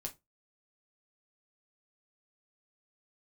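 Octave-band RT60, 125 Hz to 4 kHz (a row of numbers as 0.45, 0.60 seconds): 0.25, 0.25, 0.20, 0.20, 0.15, 0.15 seconds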